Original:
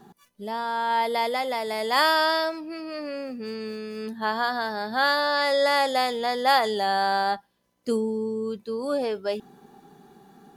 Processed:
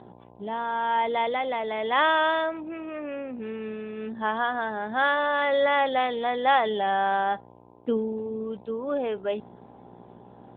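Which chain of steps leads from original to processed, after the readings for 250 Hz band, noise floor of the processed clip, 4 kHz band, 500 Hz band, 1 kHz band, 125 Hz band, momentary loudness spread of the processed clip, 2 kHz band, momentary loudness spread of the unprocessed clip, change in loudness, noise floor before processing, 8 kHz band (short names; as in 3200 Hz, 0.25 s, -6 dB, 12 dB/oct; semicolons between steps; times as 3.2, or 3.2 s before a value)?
-1.0 dB, -51 dBFS, -6.5 dB, -0.5 dB, -0.5 dB, n/a, 13 LU, -0.5 dB, 13 LU, -1.0 dB, -67 dBFS, under -35 dB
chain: buzz 60 Hz, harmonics 17, -49 dBFS -2 dB/oct; AMR-NB 10.2 kbps 8000 Hz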